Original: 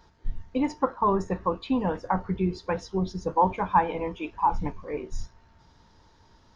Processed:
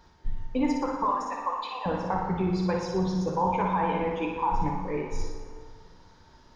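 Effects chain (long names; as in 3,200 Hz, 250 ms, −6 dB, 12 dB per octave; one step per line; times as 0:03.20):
0:01.05–0:01.86: Butterworth high-pass 650 Hz 36 dB per octave
brickwall limiter −19 dBFS, peak gain reduction 10.5 dB
flutter between parallel walls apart 10.1 metres, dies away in 0.71 s
dense smooth reverb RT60 1.9 s, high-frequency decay 0.6×, DRR 4.5 dB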